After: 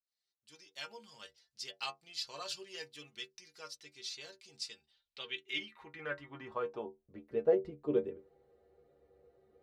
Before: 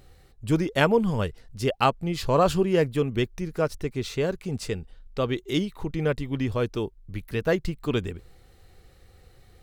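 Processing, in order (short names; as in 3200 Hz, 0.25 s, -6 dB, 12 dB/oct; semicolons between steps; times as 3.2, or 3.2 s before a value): opening faded in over 1.54 s; band-pass sweep 4900 Hz -> 470 Hz, 4.77–7.33; metallic resonator 70 Hz, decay 0.26 s, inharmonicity 0.008; gain +6.5 dB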